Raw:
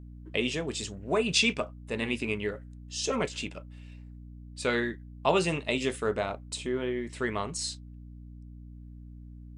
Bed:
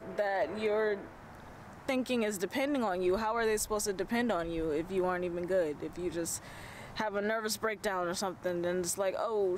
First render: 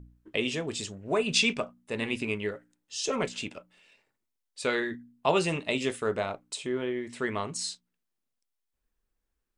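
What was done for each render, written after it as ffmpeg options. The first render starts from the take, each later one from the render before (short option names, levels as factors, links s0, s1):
-af "bandreject=f=60:t=h:w=4,bandreject=f=120:t=h:w=4,bandreject=f=180:t=h:w=4,bandreject=f=240:t=h:w=4,bandreject=f=300:t=h:w=4"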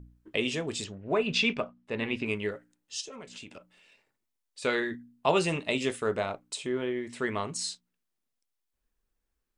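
-filter_complex "[0:a]asettb=1/sr,asplit=3[s0][s1][s2];[s0]atrim=end=0.844[s3];[s1]atrim=start=0.84:end=2.26,asetpts=PTS-STARTPTS,afade=t=in:d=0.004:c=qsin,afade=t=out:st=1.416:d=0.004:c=qsin,lowpass=3700[s4];[s2]atrim=start=2.256[s5];[s3][s4]acrossfade=d=0.004:c1=hsin:c2=qsin[s6];[s6][s5]acrossfade=d=0.004:c1=qsin:c2=hsin,asplit=3[s7][s8][s9];[s7]afade=t=out:st=3:d=0.02[s10];[s8]acompressor=threshold=0.00891:ratio=8:attack=3.2:release=140:knee=1:detection=peak,afade=t=in:st=3:d=0.02,afade=t=out:st=4.61:d=0.02[s11];[s9]afade=t=in:st=4.61:d=0.02[s12];[s10][s11][s12]amix=inputs=3:normalize=0"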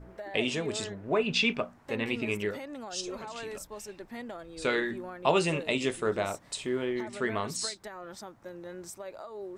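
-filter_complex "[1:a]volume=0.316[s0];[0:a][s0]amix=inputs=2:normalize=0"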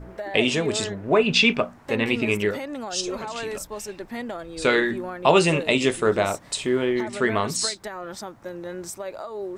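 -af "volume=2.66,alimiter=limit=0.708:level=0:latency=1"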